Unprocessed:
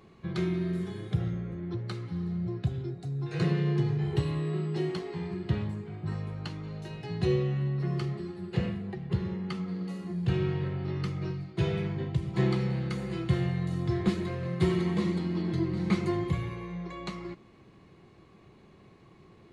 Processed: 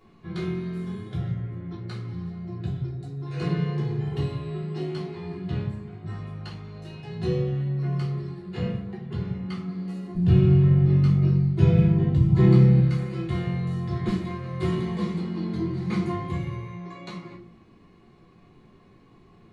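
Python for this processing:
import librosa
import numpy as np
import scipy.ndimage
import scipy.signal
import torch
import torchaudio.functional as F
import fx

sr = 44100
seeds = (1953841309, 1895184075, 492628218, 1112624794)

y = fx.low_shelf(x, sr, hz=360.0, db=12.0, at=(10.15, 12.8))
y = fx.room_shoebox(y, sr, seeds[0], volume_m3=260.0, walls='furnished', distance_m=3.2)
y = y * librosa.db_to_amplitude(-6.0)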